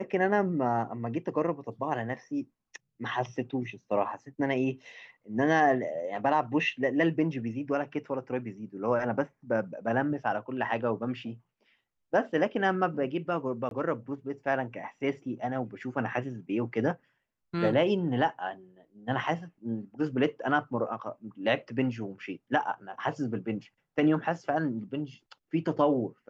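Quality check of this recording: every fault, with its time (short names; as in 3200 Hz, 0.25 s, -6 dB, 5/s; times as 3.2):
13.69–13.71 gap 22 ms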